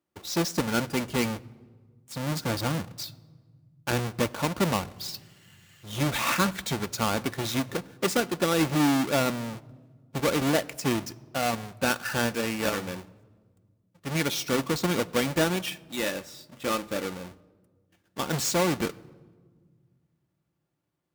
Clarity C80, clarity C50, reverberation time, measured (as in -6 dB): 23.5 dB, 22.5 dB, not exponential